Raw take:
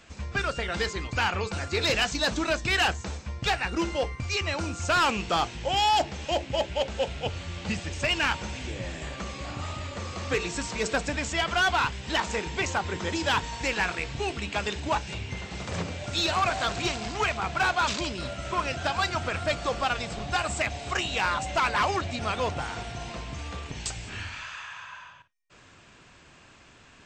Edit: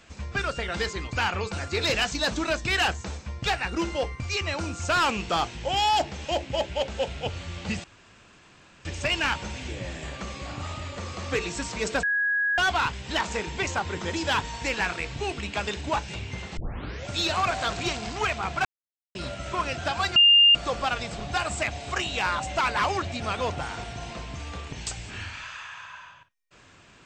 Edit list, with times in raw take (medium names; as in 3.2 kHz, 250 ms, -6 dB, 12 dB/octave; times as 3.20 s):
7.84 s: insert room tone 1.01 s
11.02–11.57 s: bleep 1.66 kHz -21.5 dBFS
15.56 s: tape start 0.51 s
17.64–18.14 s: mute
19.15–19.54 s: bleep 2.81 kHz -12.5 dBFS